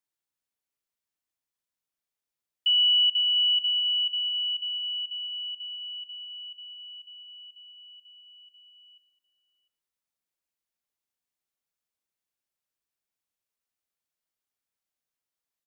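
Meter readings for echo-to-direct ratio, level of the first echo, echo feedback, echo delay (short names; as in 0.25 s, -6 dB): -15.5 dB, -18.0 dB, no steady repeat, 0.116 s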